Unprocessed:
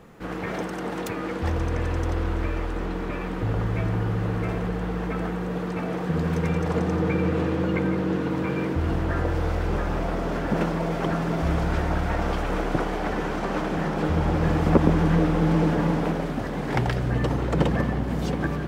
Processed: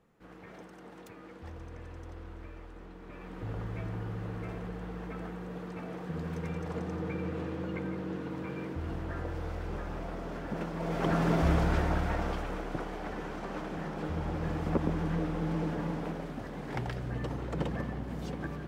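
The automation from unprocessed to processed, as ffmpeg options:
-af "volume=-1dB,afade=t=in:st=3:d=0.5:silence=0.421697,afade=t=in:st=10.72:d=0.56:silence=0.281838,afade=t=out:st=11.28:d=1.31:silence=0.298538"

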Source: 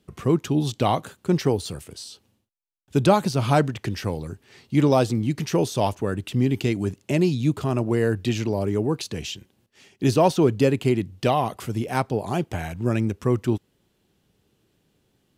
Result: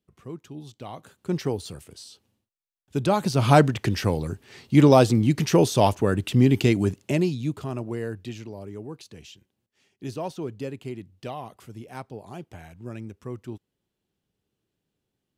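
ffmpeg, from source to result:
-af "volume=3.5dB,afade=t=in:st=0.92:d=0.4:silence=0.251189,afade=t=in:st=3.09:d=0.45:silence=0.354813,afade=t=out:st=6.76:d=0.59:silence=0.354813,afade=t=out:st=7.35:d=1.16:silence=0.375837"

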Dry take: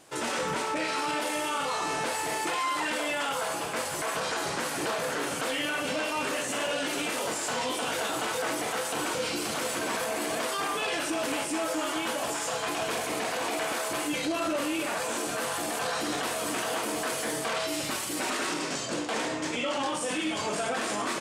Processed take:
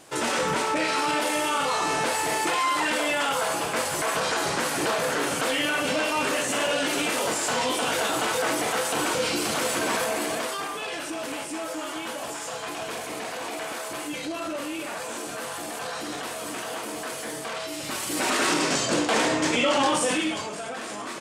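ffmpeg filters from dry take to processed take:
-af "volume=15.5dB,afade=t=out:st=9.98:d=0.74:silence=0.421697,afade=t=in:st=17.8:d=0.71:silence=0.298538,afade=t=out:st=19.99:d=0.51:silence=0.251189"

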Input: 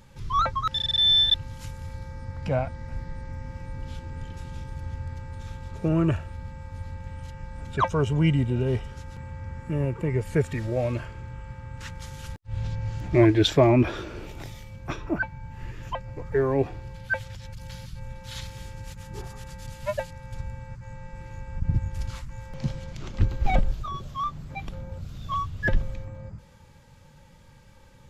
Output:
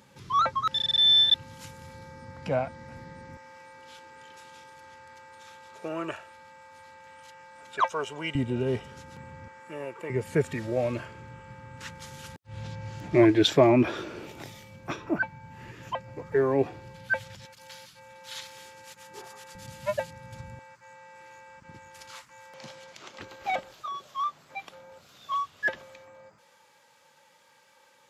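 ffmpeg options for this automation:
-af "asetnsamples=n=441:p=0,asendcmd='3.37 highpass f 610;8.35 highpass f 180;9.48 highpass f 580;10.1 highpass f 170;17.45 highpass f 470;19.55 highpass f 150;20.59 highpass f 590',highpass=190"

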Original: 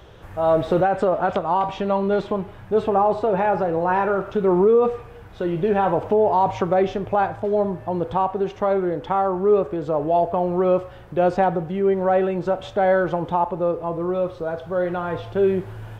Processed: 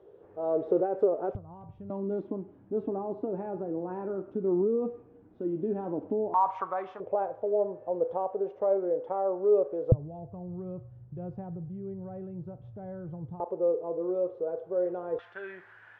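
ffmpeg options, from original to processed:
-af "asetnsamples=n=441:p=0,asendcmd='1.35 bandpass f 100;1.9 bandpass f 280;6.34 bandpass f 1100;7 bandpass f 510;9.92 bandpass f 120;13.4 bandpass f 450;15.19 bandpass f 1700',bandpass=f=420:t=q:w=4.2:csg=0"

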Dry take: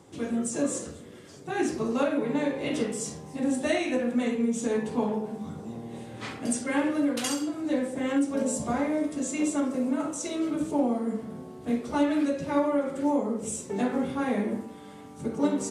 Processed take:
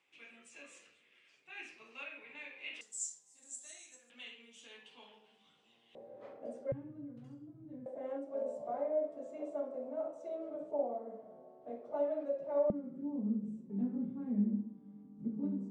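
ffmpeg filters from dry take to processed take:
-af "asetnsamples=n=441:p=0,asendcmd='2.81 bandpass f 7300;4.1 bandpass f 3000;5.95 bandpass f 560;6.72 bandpass f 130;7.86 bandpass f 620;12.7 bandpass f 210',bandpass=f=2.5k:t=q:w=6.7:csg=0"

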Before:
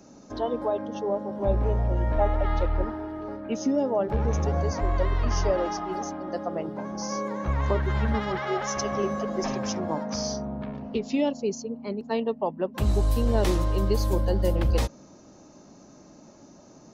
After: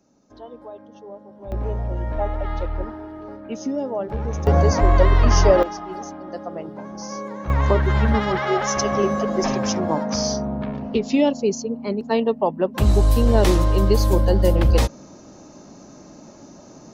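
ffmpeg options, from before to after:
-af "asetnsamples=n=441:p=0,asendcmd='1.52 volume volume -1dB;4.47 volume volume 10dB;5.63 volume volume -1dB;7.5 volume volume 7dB',volume=-11.5dB"

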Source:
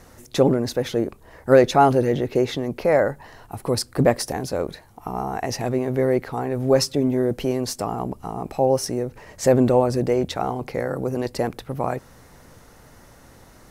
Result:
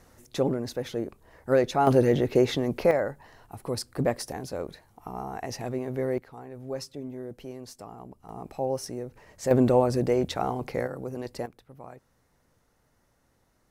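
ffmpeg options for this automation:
-af "asetnsamples=n=441:p=0,asendcmd='1.87 volume volume -1dB;2.91 volume volume -8.5dB;6.18 volume volume -17dB;8.29 volume volume -10dB;9.51 volume volume -3.5dB;10.87 volume volume -10dB;11.46 volume volume -20dB',volume=-8.5dB"

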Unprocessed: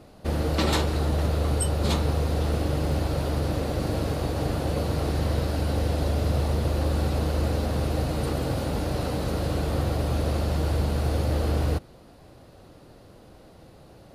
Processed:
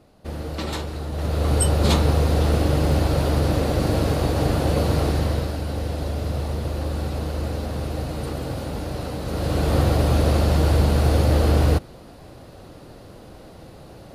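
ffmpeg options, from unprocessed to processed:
-af "volume=14.5dB,afade=t=in:st=1.11:d=0.51:silence=0.281838,afade=t=out:st=4.96:d=0.63:silence=0.421697,afade=t=in:st=9.24:d=0.52:silence=0.375837"

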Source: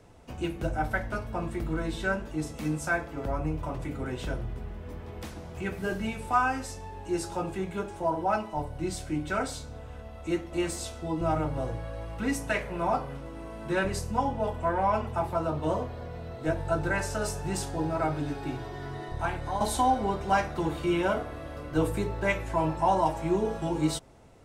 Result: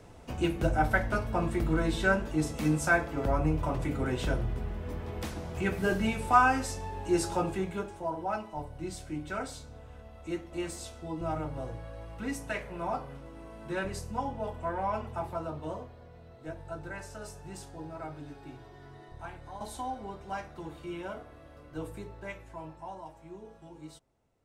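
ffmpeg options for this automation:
-af "volume=3dB,afade=t=out:st=7.31:d=0.7:silence=0.354813,afade=t=out:st=15.28:d=0.7:silence=0.473151,afade=t=out:st=21.98:d=1.05:silence=0.421697"

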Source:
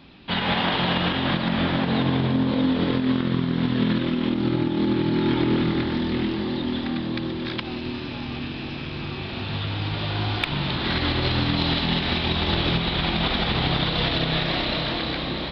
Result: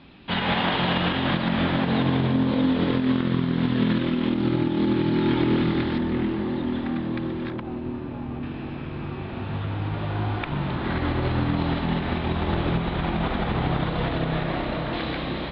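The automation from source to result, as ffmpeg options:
-af "asetnsamples=n=441:p=0,asendcmd='5.98 lowpass f 2000;7.5 lowpass f 1100;8.43 lowpass f 1600;14.93 lowpass f 2600',lowpass=3.6k"

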